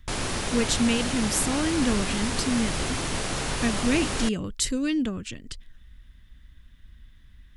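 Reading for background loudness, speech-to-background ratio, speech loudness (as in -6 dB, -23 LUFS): -29.0 LUFS, 2.0 dB, -27.0 LUFS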